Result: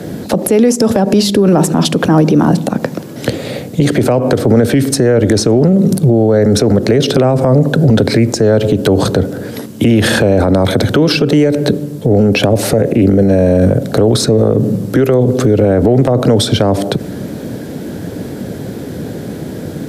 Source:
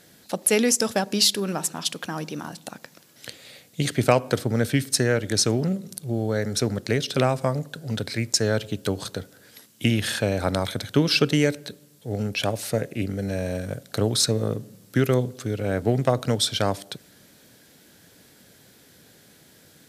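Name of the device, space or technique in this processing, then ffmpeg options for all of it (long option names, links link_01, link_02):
mastering chain: -filter_complex "[0:a]highpass=47,equalizer=frequency=390:width_type=o:width=2.1:gain=3.5,acrossover=split=200|460[link_01][link_02][link_03];[link_01]acompressor=threshold=-38dB:ratio=4[link_04];[link_02]acompressor=threshold=-32dB:ratio=4[link_05];[link_03]acompressor=threshold=-24dB:ratio=4[link_06];[link_04][link_05][link_06]amix=inputs=3:normalize=0,acompressor=threshold=-28dB:ratio=2.5,asoftclip=type=tanh:threshold=-13dB,tiltshelf=frequency=970:gain=10,alimiter=level_in=24.5dB:limit=-1dB:release=50:level=0:latency=1,volume=-1dB"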